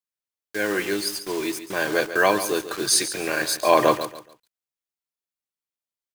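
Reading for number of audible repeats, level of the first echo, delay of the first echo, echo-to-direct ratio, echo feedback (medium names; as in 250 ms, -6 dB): 3, -12.0 dB, 141 ms, -11.5 dB, 28%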